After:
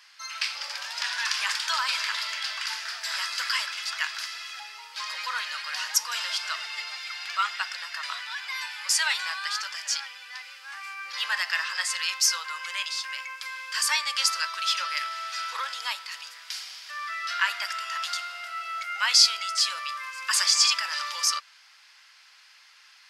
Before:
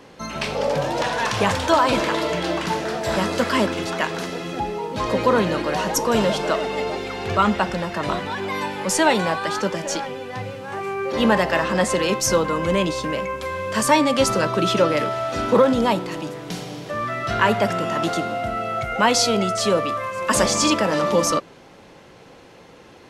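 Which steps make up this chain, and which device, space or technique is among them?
headphones lying on a table (HPF 1400 Hz 24 dB/oct; bell 4900 Hz +10.5 dB 0.27 oct); gain -2 dB

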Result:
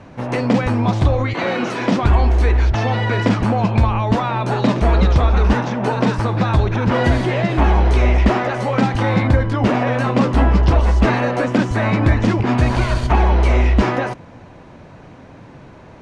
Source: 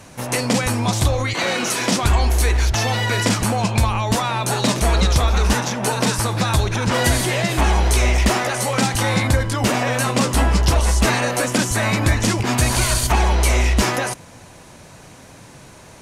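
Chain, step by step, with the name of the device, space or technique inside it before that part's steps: phone in a pocket (LPF 3800 Hz 12 dB/oct; bell 280 Hz +2.5 dB 0.77 oct; high shelf 2300 Hz -11 dB); gain +3 dB

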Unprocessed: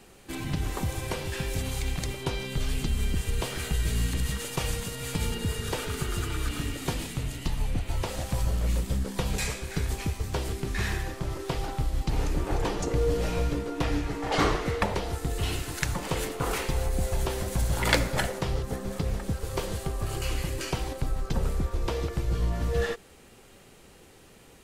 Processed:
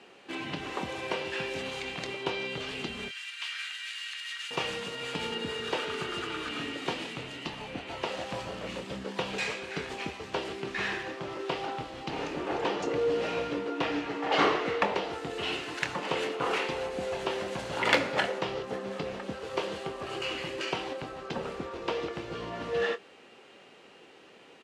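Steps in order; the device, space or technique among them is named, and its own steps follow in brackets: 3.08–4.51 HPF 1500 Hz 24 dB/oct; intercom (BPF 300–3800 Hz; bell 2800 Hz +5 dB 0.28 oct; soft clip -11 dBFS, distortion -25 dB; doubler 25 ms -11 dB); gain +1.5 dB

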